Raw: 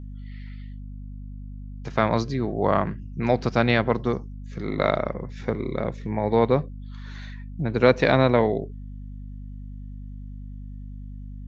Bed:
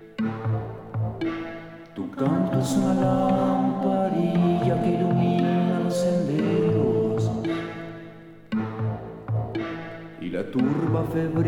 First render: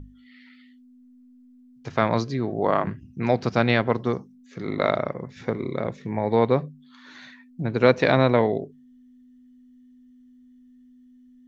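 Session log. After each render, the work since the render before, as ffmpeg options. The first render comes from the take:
-af "bandreject=f=50:t=h:w=6,bandreject=f=100:t=h:w=6,bandreject=f=150:t=h:w=6,bandreject=f=200:t=h:w=6"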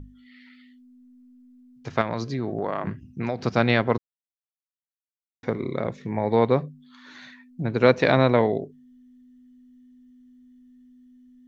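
-filter_complex "[0:a]asettb=1/sr,asplit=3[s0][s1][s2];[s0]atrim=end=2.014[s3];[s1]atrim=start=2.01:end=3.4,asetpts=PTS-STARTPTS,afade=t=in:d=0.004:c=qsin,afade=t=out:st=1.386:d=0.004:c=qsin,acompressor=threshold=0.0794:ratio=5:attack=3.2:release=140:knee=1:detection=peak[s4];[s2]atrim=start=3.396[s5];[s3][s4]acrossfade=d=0.004:c1=hsin:c2=qsin[s6];[s6][s5]acrossfade=d=0.004:c1=qsin:c2=hsin,asplit=3[s7][s8][s9];[s7]atrim=end=3.98,asetpts=PTS-STARTPTS,afade=t=out:st=3.976:d=0.004:c=hsin[s10];[s8]atrim=start=3.98:end=5.43,asetpts=PTS-STARTPTS,volume=0[s11];[s9]atrim=start=5.43,asetpts=PTS-STARTPTS,afade=t=in:d=0.004:c=hsin[s12];[s10][s11][s12]concat=n=3:v=0:a=1"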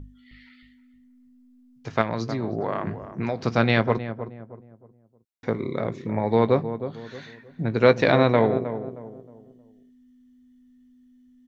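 -filter_complex "[0:a]asplit=2[s0][s1];[s1]adelay=18,volume=0.224[s2];[s0][s2]amix=inputs=2:normalize=0,asplit=2[s3][s4];[s4]adelay=313,lowpass=f=960:p=1,volume=0.316,asplit=2[s5][s6];[s6]adelay=313,lowpass=f=960:p=1,volume=0.37,asplit=2[s7][s8];[s8]adelay=313,lowpass=f=960:p=1,volume=0.37,asplit=2[s9][s10];[s10]adelay=313,lowpass=f=960:p=1,volume=0.37[s11];[s5][s7][s9][s11]amix=inputs=4:normalize=0[s12];[s3][s12]amix=inputs=2:normalize=0"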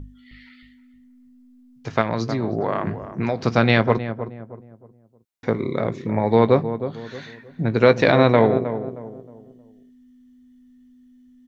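-af "volume=1.58,alimiter=limit=0.794:level=0:latency=1"

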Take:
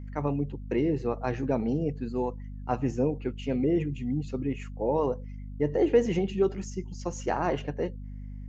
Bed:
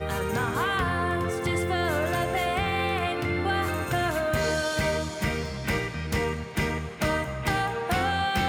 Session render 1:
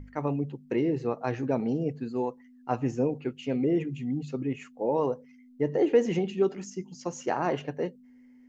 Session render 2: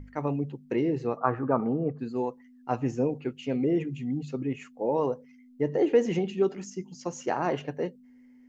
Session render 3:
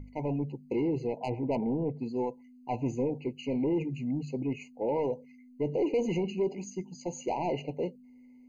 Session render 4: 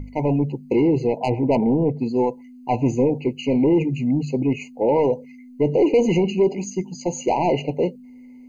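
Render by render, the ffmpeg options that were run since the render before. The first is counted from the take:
-af "bandreject=f=50:t=h:w=6,bandreject=f=100:t=h:w=6,bandreject=f=150:t=h:w=6,bandreject=f=200:t=h:w=6"
-filter_complex "[0:a]asplit=3[s0][s1][s2];[s0]afade=t=out:st=1.17:d=0.02[s3];[s1]lowpass=f=1200:t=q:w=7.4,afade=t=in:st=1.17:d=0.02,afade=t=out:st=1.98:d=0.02[s4];[s2]afade=t=in:st=1.98:d=0.02[s5];[s3][s4][s5]amix=inputs=3:normalize=0"
-af "asoftclip=type=tanh:threshold=0.0708,afftfilt=real='re*eq(mod(floor(b*sr/1024/1000),2),0)':imag='im*eq(mod(floor(b*sr/1024/1000),2),0)':win_size=1024:overlap=0.75"
-af "volume=3.76"

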